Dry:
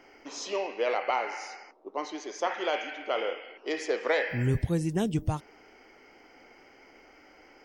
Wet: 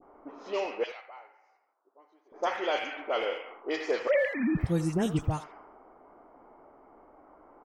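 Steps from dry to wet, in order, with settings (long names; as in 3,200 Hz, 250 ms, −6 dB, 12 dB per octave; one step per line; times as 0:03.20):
0:04.07–0:04.57: three sine waves on the formant tracks
noise in a band 600–1,400 Hz −52 dBFS
0:00.83–0:02.32: first difference
all-pass dispersion highs, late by 41 ms, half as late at 1,800 Hz
low-pass that shuts in the quiet parts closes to 480 Hz, open at −26 dBFS
far-end echo of a speakerphone 80 ms, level −13 dB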